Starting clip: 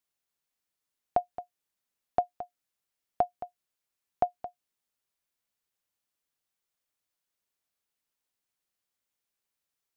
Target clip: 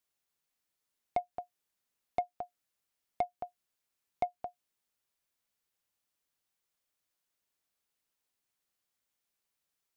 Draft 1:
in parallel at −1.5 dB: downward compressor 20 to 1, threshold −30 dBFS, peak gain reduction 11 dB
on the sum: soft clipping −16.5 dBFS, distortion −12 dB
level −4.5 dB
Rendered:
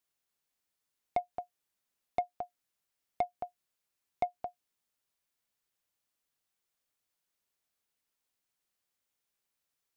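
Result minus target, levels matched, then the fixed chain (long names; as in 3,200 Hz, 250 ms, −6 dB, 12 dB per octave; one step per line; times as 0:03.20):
downward compressor: peak gain reduction −5.5 dB
in parallel at −1.5 dB: downward compressor 20 to 1, threshold −36 dBFS, peak gain reduction 16.5 dB
on the sum: soft clipping −16.5 dBFS, distortion −14 dB
level −4.5 dB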